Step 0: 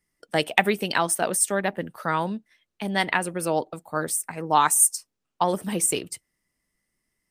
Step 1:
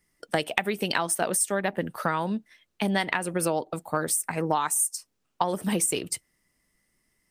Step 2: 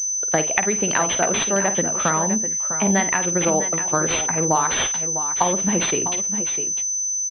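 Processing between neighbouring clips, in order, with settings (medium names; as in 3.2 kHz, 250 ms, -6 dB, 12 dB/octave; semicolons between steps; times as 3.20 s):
compression 12:1, threshold -27 dBFS, peak gain reduction 15 dB; trim +5.5 dB
multi-tap echo 51/652/666 ms -11/-10.5/-18 dB; class-D stage that switches slowly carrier 6.1 kHz; trim +5 dB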